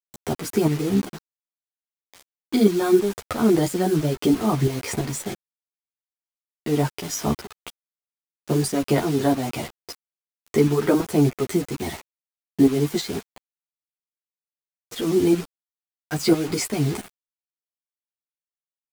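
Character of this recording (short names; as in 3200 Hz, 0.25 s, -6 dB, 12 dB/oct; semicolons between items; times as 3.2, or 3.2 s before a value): tremolo saw up 3 Hz, depth 70%; a quantiser's noise floor 6-bit, dither none; a shimmering, thickened sound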